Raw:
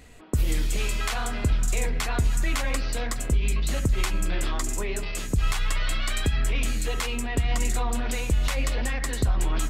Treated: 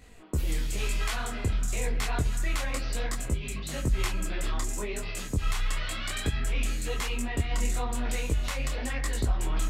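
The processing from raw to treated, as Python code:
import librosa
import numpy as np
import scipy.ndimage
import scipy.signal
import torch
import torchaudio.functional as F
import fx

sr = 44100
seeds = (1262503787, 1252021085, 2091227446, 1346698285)

y = fx.detune_double(x, sr, cents=34)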